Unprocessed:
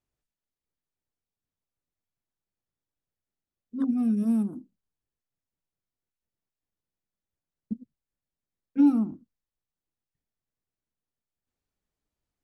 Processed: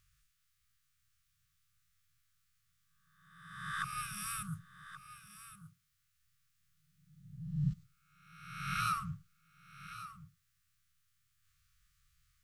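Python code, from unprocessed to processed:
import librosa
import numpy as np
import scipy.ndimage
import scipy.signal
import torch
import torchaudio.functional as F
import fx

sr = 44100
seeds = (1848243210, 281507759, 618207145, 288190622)

p1 = fx.spec_swells(x, sr, rise_s=1.05)
p2 = fx.brickwall_bandstop(p1, sr, low_hz=160.0, high_hz=1100.0)
p3 = p2 + fx.echo_single(p2, sr, ms=1128, db=-13.5, dry=0)
y = p3 * 10.0 ** (12.0 / 20.0)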